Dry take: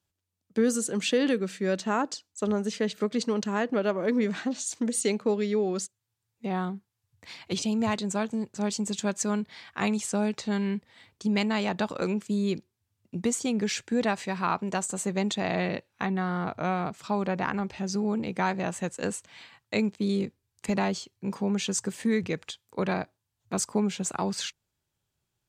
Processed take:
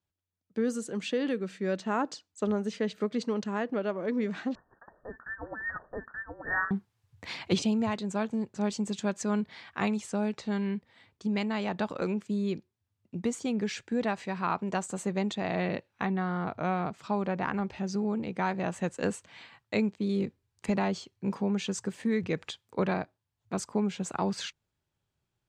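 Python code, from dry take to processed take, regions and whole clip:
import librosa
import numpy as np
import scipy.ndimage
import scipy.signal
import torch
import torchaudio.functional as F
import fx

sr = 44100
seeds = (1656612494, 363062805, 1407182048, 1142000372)

y = fx.chain(x, sr, fx.cheby1_highpass(hz=750.0, order=10),
    fx.freq_invert(carrier_hz=2600),
    fx.echo_single(ms=879, db=-6.0), at=(4.55, 6.71))
y = fx.lowpass(y, sr, hz=3100.0, slope=6)
y = fx.rider(y, sr, range_db=10, speed_s=0.5)
y = y * 10.0 ** (-2.0 / 20.0)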